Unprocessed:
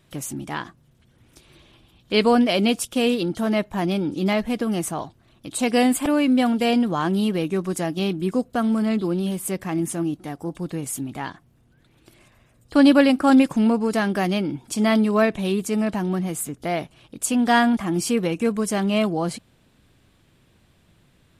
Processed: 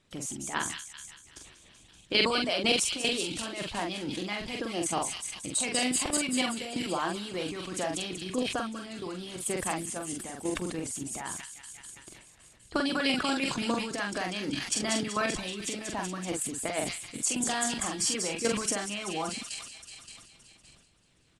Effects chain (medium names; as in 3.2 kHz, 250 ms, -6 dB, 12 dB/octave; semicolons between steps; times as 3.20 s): low-pass 8.6 kHz 24 dB/octave; treble shelf 5.1 kHz +6.5 dB; feedback echo behind a high-pass 191 ms, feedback 70%, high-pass 2.9 kHz, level -4 dB; level held to a coarse grid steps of 9 dB; harmonic-percussive split harmonic -14 dB; doubling 44 ms -5 dB; decay stretcher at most 59 dB/s